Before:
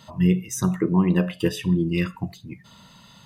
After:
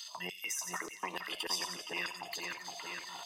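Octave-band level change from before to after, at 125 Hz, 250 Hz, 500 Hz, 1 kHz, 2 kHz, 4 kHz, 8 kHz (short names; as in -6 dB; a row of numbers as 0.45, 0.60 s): -35.0, -30.0, -19.0, -5.0, -3.0, +0.5, -3.0 dB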